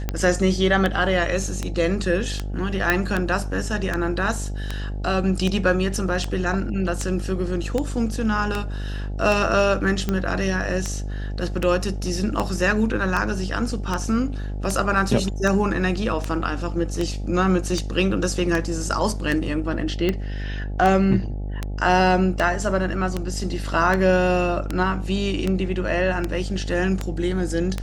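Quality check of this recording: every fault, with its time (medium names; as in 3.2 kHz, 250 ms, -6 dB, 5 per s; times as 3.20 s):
buzz 50 Hz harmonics 17 -28 dBFS
tick 78 rpm -10 dBFS
2.90 s: pop -5 dBFS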